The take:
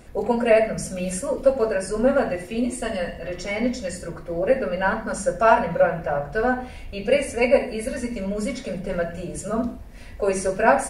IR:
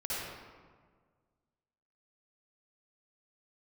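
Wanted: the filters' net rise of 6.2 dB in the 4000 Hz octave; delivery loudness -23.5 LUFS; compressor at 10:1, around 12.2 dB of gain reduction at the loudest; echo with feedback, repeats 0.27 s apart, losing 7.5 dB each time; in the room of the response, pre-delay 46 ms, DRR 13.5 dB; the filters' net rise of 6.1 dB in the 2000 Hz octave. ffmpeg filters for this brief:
-filter_complex "[0:a]equalizer=f=2k:t=o:g=7,equalizer=f=4k:t=o:g=6,acompressor=threshold=-22dB:ratio=10,aecho=1:1:270|540|810|1080|1350:0.422|0.177|0.0744|0.0312|0.0131,asplit=2[a][b];[1:a]atrim=start_sample=2205,adelay=46[c];[b][c]afir=irnorm=-1:irlink=0,volume=-18.5dB[d];[a][d]amix=inputs=2:normalize=0,volume=3dB"

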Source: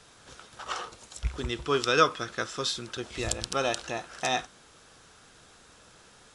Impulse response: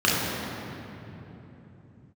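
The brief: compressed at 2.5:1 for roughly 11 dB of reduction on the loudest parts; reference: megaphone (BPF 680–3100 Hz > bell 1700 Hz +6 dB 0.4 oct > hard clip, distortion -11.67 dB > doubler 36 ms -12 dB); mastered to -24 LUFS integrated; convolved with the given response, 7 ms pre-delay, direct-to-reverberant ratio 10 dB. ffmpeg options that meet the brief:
-filter_complex "[0:a]acompressor=threshold=-32dB:ratio=2.5,asplit=2[a][b];[1:a]atrim=start_sample=2205,adelay=7[c];[b][c]afir=irnorm=-1:irlink=0,volume=-29dB[d];[a][d]amix=inputs=2:normalize=0,highpass=680,lowpass=3.1k,equalizer=f=1.7k:t=o:w=0.4:g=6,asoftclip=type=hard:threshold=-30dB,asplit=2[e][f];[f]adelay=36,volume=-12dB[g];[e][g]amix=inputs=2:normalize=0,volume=14.5dB"

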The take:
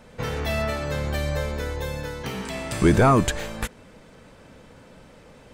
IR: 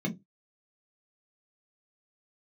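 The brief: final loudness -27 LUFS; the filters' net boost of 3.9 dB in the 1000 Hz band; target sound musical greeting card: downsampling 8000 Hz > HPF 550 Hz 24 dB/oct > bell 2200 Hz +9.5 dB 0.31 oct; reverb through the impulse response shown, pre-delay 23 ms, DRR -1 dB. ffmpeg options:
-filter_complex "[0:a]equalizer=f=1k:t=o:g=5,asplit=2[a][b];[1:a]atrim=start_sample=2205,adelay=23[c];[b][c]afir=irnorm=-1:irlink=0,volume=-4dB[d];[a][d]amix=inputs=2:normalize=0,aresample=8000,aresample=44100,highpass=f=550:w=0.5412,highpass=f=550:w=1.3066,equalizer=f=2.2k:t=o:w=0.31:g=9.5,volume=-5dB"

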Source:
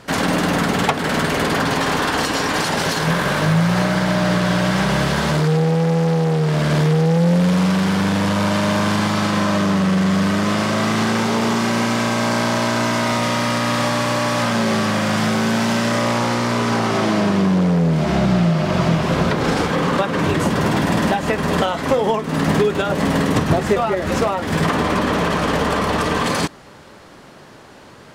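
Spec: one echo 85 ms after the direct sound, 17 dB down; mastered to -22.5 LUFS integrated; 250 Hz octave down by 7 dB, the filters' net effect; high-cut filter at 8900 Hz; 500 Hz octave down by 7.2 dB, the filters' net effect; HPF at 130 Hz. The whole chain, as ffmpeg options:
-af "highpass=130,lowpass=8.9k,equalizer=f=250:t=o:g=-8,equalizer=f=500:t=o:g=-7,aecho=1:1:85:0.141,volume=-0.5dB"

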